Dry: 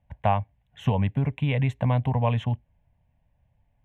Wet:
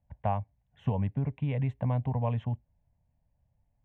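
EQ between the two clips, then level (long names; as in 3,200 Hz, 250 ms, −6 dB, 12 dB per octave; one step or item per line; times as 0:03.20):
low-pass filter 1,000 Hz 6 dB per octave
−5.5 dB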